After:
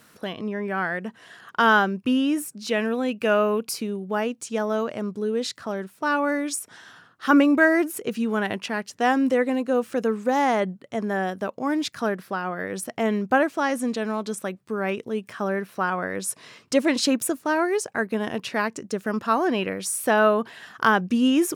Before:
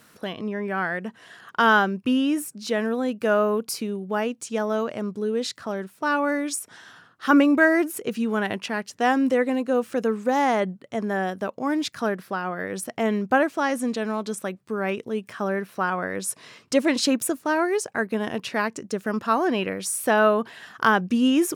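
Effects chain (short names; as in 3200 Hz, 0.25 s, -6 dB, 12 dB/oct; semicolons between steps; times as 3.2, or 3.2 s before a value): 2.69–3.7 bell 2600 Hz +9.5 dB 0.48 oct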